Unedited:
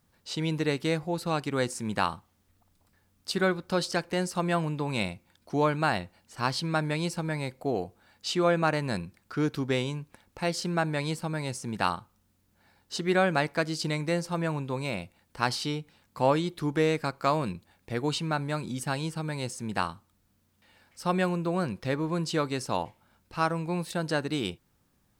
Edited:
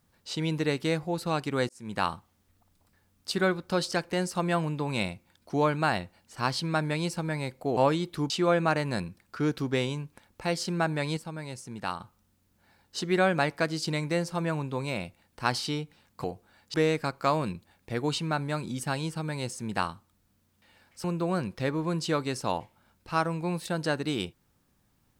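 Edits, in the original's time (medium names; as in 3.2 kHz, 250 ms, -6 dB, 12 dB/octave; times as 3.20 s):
1.69–2.07 s: fade in
7.77–8.27 s: swap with 16.21–16.74 s
11.14–11.97 s: gain -6 dB
21.04–21.29 s: delete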